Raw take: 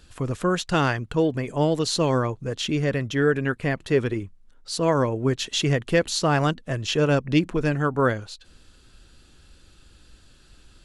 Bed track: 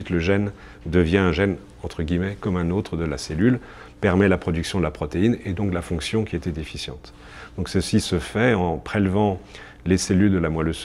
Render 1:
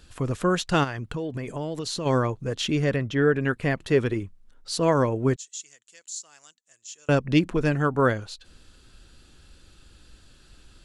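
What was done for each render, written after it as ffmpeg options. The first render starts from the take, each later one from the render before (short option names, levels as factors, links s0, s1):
-filter_complex "[0:a]asplit=3[s0][s1][s2];[s0]afade=t=out:st=0.83:d=0.02[s3];[s1]acompressor=threshold=0.0447:ratio=6:attack=3.2:release=140:knee=1:detection=peak,afade=t=in:st=0.83:d=0.02,afade=t=out:st=2.05:d=0.02[s4];[s2]afade=t=in:st=2.05:d=0.02[s5];[s3][s4][s5]amix=inputs=3:normalize=0,asettb=1/sr,asplit=3[s6][s7][s8];[s6]atrim=end=2.964[s9];[s7]atrim=start=2.96:end=3.41,asetpts=PTS-STARTPTS,afade=t=in:d=0.004:c=qsin,afade=t=out:st=0.446:d=0.004:c=qsin,lowpass=f=2900:p=1[s10];[s8]atrim=start=3.406[s11];[s9][s10]acrossfade=d=0.004:c1=hsin:c2=qsin[s12];[s12][s11]acrossfade=d=0.004:c1=qsin:c2=hsin,asettb=1/sr,asplit=3[s13][s14][s15];[s13]atrim=end=5.364[s16];[s14]atrim=start=5.36:end=7.09,asetpts=PTS-STARTPTS,afade=t=in:d=0.004:c=qsin,afade=t=out:st=1.726:d=0.004:c=qsin,bandpass=f=7100:t=q:w=6.2[s17];[s15]atrim=start=7.086[s18];[s16][s17]acrossfade=d=0.004:c1=hsin:c2=qsin[s19];[s19][s18]acrossfade=d=0.004:c1=qsin:c2=hsin"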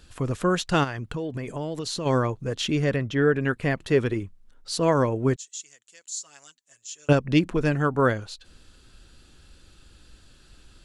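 -filter_complex "[0:a]asettb=1/sr,asplit=3[s0][s1][s2];[s0]atrim=end=6.114[s3];[s1]atrim=start=6.11:end=7.13,asetpts=PTS-STARTPTS,afade=t=in:d=0.004:c=qsin,afade=t=out:st=1.016:d=0.004:c=qsin,aecho=1:1:7.2:0.8,atrim=end_sample=44982[s4];[s2]atrim=start=7.126[s5];[s3][s4]acrossfade=d=0.004:c1=hsin:c2=qsin[s6];[s6][s5]acrossfade=d=0.004:c1=qsin:c2=hsin"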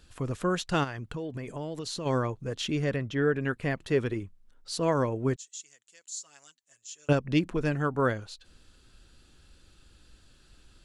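-af "volume=0.562"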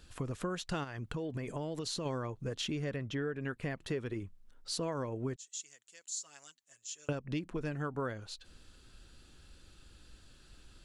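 -af "acompressor=threshold=0.02:ratio=5"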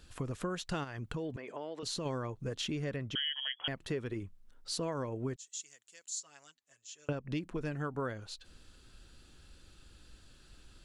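-filter_complex "[0:a]asettb=1/sr,asplit=3[s0][s1][s2];[s0]atrim=end=1.364[s3];[s1]atrim=start=1.36:end=1.83,asetpts=PTS-STARTPTS,afade=t=in:d=0.004:c=qsin,afade=t=out:st=0.466:d=0.004:c=qsin,highpass=400,lowpass=3800[s4];[s2]atrim=start=1.826[s5];[s3][s4]acrossfade=d=0.004:c1=hsin:c2=qsin[s6];[s6][s5]acrossfade=d=0.004:c1=qsin:c2=hsin,asettb=1/sr,asplit=3[s7][s8][s9];[s7]atrim=end=3.154[s10];[s8]atrim=start=3.15:end=3.68,asetpts=PTS-STARTPTS,afade=t=in:d=0.004:c=qsin,afade=t=out:st=0.526:d=0.004:c=qsin,lowpass=f=2900:t=q:w=0.5098,lowpass=f=2900:t=q:w=0.6013,lowpass=f=2900:t=q:w=0.9,lowpass=f=2900:t=q:w=2.563,afreqshift=-3400[s11];[s9]atrim=start=3.676[s12];[s10][s11]acrossfade=d=0.004:c1=hsin:c2=qsin[s13];[s13][s12]acrossfade=d=0.004:c1=qsin:c2=hsin,asettb=1/sr,asplit=3[s14][s15][s16];[s14]atrim=end=6.204[s17];[s15]atrim=start=6.2:end=7.25,asetpts=PTS-STARTPTS,afade=t=in:d=0.004:c=qsin,afade=t=out:st=1.046:d=0.004:c=qsin,lowpass=f=3500:p=1[s18];[s16]atrim=start=7.246[s19];[s17][s18]acrossfade=d=0.004:c1=hsin:c2=qsin[s20];[s20][s19]acrossfade=d=0.004:c1=qsin:c2=hsin"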